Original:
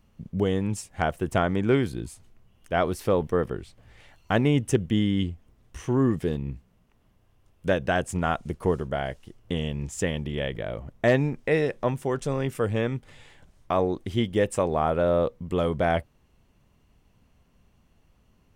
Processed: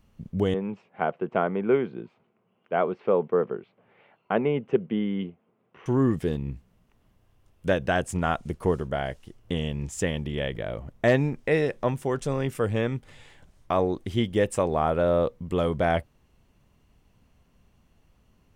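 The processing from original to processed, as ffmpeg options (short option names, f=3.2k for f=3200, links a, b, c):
-filter_complex "[0:a]asettb=1/sr,asplit=3[a][b][c];[a]atrim=end=0.544[d];[b]atrim=start=0.54:end=5.86,asetpts=PTS-STARTPTS,afade=t=in:d=0.004:c=qsin,afade=t=out:st=5.316:d=0.004:c=qsin,highpass=f=180:w=0.5412,highpass=f=180:w=1.3066,equalizer=f=290:t=q:w=4:g=-8,equalizer=f=420:t=q:w=4:g=4,equalizer=f=1.8k:t=q:w=4:g=-8,lowpass=f=2.4k:w=0.5412,lowpass=f=2.4k:w=1.3066[e];[c]atrim=start=5.856[f];[d][e]acrossfade=d=0.004:c1=hsin:c2=qsin[g];[g][f]acrossfade=d=0.004:c1=qsin:c2=hsin"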